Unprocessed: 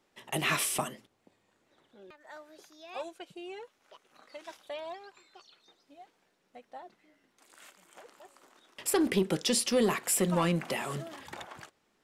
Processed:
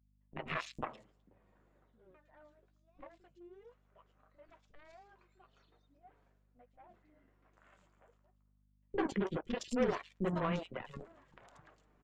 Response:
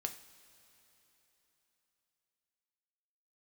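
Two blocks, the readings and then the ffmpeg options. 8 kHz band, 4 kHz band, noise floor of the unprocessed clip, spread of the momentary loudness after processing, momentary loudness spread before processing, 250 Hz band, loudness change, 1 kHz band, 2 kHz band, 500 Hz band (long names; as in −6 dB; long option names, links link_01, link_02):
−25.0 dB, −16.0 dB, −74 dBFS, 23 LU, 22 LU, −7.5 dB, −7.5 dB, −7.0 dB, −9.5 dB, −7.0 dB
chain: -filter_complex "[0:a]asplit=2[link_01][link_02];[link_02]acrusher=bits=7:mix=0:aa=0.000001,volume=-11.5dB[link_03];[link_01][link_03]amix=inputs=2:normalize=0,flanger=delay=6.3:depth=8.9:regen=-34:speed=0.17:shape=triangular,adynamicsmooth=sensitivity=4:basefreq=2100,aeval=exprs='0.133*(cos(1*acos(clip(val(0)/0.133,-1,1)))-cos(1*PI/2))+0.00531*(cos(4*acos(clip(val(0)/0.133,-1,1)))-cos(4*PI/2))+0.0211*(cos(7*acos(clip(val(0)/0.133,-1,1)))-cos(7*PI/2))':channel_layout=same,afftdn=noise_reduction=20:noise_floor=-46,equalizer=frequency=7200:width_type=o:width=0.46:gain=12,areverse,acompressor=mode=upward:threshold=-30dB:ratio=2.5,areverse,highshelf=frequency=4200:gain=-6.5,acrossover=split=340|3300[link_04][link_05][link_06];[link_05]adelay=40[link_07];[link_06]adelay=150[link_08];[link_04][link_07][link_08]amix=inputs=3:normalize=0,aeval=exprs='val(0)+0.000398*(sin(2*PI*50*n/s)+sin(2*PI*2*50*n/s)/2+sin(2*PI*3*50*n/s)/3+sin(2*PI*4*50*n/s)/4+sin(2*PI*5*50*n/s)/5)':channel_layout=same,bandreject=frequency=840:width=12,volume=-3dB"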